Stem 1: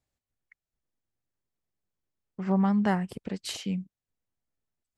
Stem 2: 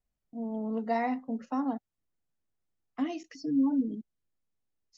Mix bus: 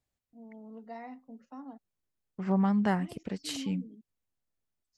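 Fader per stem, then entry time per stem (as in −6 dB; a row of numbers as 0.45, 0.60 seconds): −2.0, −14.5 decibels; 0.00, 0.00 seconds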